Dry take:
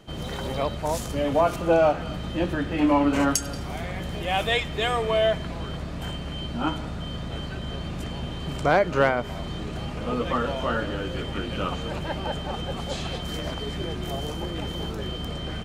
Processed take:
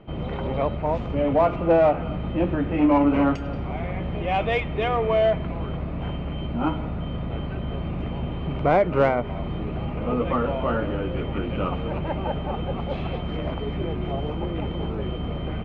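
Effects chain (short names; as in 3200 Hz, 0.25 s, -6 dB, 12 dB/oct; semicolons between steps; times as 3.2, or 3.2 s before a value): Chebyshev low-pass 2300 Hz, order 3; bell 1700 Hz -9.5 dB 0.51 oct; in parallel at -4.5 dB: soft clip -21 dBFS, distortion -11 dB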